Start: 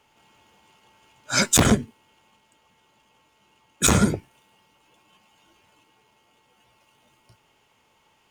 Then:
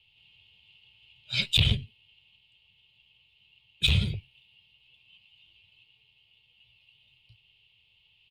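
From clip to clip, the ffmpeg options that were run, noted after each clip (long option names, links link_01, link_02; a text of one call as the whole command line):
ffmpeg -i in.wav -af "firequalizer=gain_entry='entry(110,0);entry(260,-25);entry(420,-19);entry(640,-22);entry(1500,-27);entry(2700,7);entry(4000,2);entry(6100,-27);entry(9300,-20)':delay=0.05:min_phase=1" out.wav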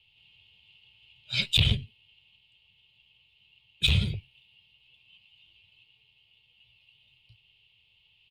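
ffmpeg -i in.wav -af anull out.wav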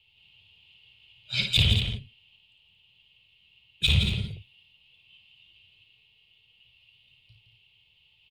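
ffmpeg -i in.wav -af "aecho=1:1:55|166|228:0.501|0.422|0.335" out.wav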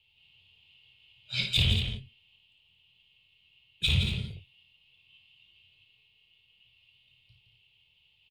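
ffmpeg -i in.wav -filter_complex "[0:a]asplit=2[link_01][link_02];[link_02]adelay=23,volume=-8.5dB[link_03];[link_01][link_03]amix=inputs=2:normalize=0,volume=-4dB" out.wav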